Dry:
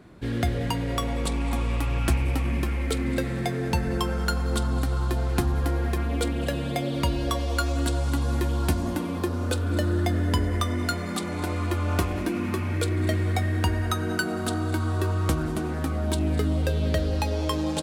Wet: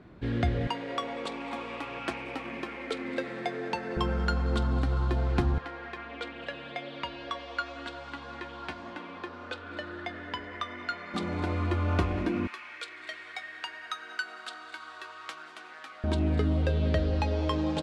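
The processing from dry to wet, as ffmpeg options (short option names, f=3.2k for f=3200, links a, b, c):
-filter_complex "[0:a]asettb=1/sr,asplit=3[a][b][c];[a]atrim=end=0.674[d];[b]atrim=start=0.67:end=3.97,asetpts=PTS-STARTPTS,afade=t=in:d=0.004:c=qsin,afade=t=out:st=3.296:d=0.004:c=qsin,highpass=370[e];[c]atrim=start=3.966[f];[d][e]acrossfade=d=0.004:c1=hsin:c2=qsin[g];[g][f]acrossfade=d=0.004:c1=qsin:c2=hsin,asettb=1/sr,asplit=3[h][i][j];[h]atrim=end=5.584[k];[i]atrim=start=5.58:end=11.14,asetpts=PTS-STARTPTS,afade=t=in:d=0.004:c=qsin,afade=t=out:st=5.556:d=0.004:c=qsin,bandpass=f=2k:t=q:w=0.71[l];[j]atrim=start=11.136[m];[k][l]acrossfade=d=0.004:c1=hsin:c2=qsin[n];[n][m]acrossfade=d=0.004:c1=qsin:c2=hsin,asettb=1/sr,asplit=3[o][p][q];[o]atrim=end=12.474[r];[p]atrim=start=12.47:end=16.04,asetpts=PTS-STARTPTS,afade=t=in:d=0.004:c=qsin,afade=t=out:st=3.566:d=0.004:c=qsin,highpass=1.5k[s];[q]atrim=start=16.036[t];[r][s]acrossfade=d=0.004:c1=hsin:c2=qsin[u];[u][t]acrossfade=d=0.004:c1=qsin:c2=hsin,lowpass=3.7k,volume=-2dB"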